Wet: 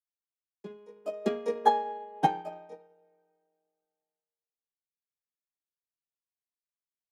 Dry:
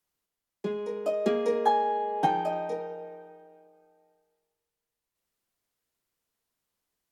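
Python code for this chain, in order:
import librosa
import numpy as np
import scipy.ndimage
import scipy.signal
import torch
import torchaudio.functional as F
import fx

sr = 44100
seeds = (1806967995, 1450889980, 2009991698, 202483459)

y = fx.upward_expand(x, sr, threshold_db=-38.0, expansion=2.5)
y = y * librosa.db_to_amplitude(3.0)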